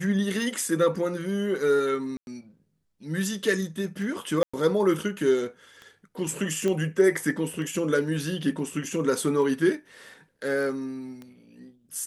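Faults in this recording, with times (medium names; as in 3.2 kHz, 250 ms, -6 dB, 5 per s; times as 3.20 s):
tick 33 1/3 rpm
2.17–2.27 s: dropout 101 ms
4.43–4.54 s: dropout 105 ms
6.68 s: pop -16 dBFS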